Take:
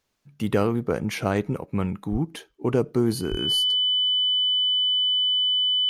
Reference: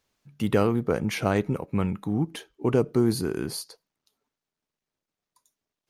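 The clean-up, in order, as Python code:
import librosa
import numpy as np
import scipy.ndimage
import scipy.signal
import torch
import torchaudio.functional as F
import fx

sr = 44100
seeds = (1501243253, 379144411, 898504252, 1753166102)

y = fx.notch(x, sr, hz=3000.0, q=30.0)
y = fx.highpass(y, sr, hz=140.0, slope=24, at=(2.11, 2.23), fade=0.02)
y = fx.highpass(y, sr, hz=140.0, slope=24, at=(3.3, 3.42), fade=0.02)
y = fx.gain(y, sr, db=fx.steps((0.0, 0.0), (5.18, 9.5)))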